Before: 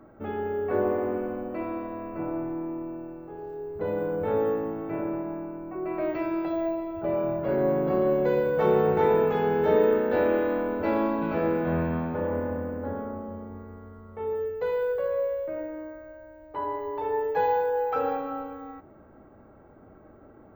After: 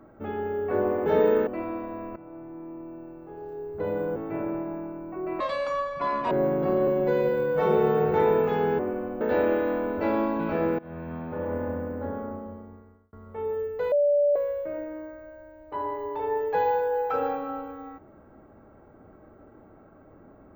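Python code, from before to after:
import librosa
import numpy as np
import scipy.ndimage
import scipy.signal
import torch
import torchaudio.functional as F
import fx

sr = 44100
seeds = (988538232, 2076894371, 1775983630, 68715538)

y = fx.edit(x, sr, fx.swap(start_s=1.06, length_s=0.42, other_s=9.62, other_length_s=0.41),
    fx.fade_in_from(start_s=2.17, length_s=1.43, floor_db=-16.5),
    fx.cut(start_s=4.17, length_s=0.58),
    fx.speed_span(start_s=5.99, length_s=1.57, speed=1.72),
    fx.stretch_span(start_s=8.12, length_s=0.83, factor=1.5),
    fx.fade_in_from(start_s=11.61, length_s=0.89, floor_db=-22.0),
    fx.fade_out_span(start_s=13.15, length_s=0.8),
    fx.bleep(start_s=14.74, length_s=0.44, hz=580.0, db=-18.0), tone=tone)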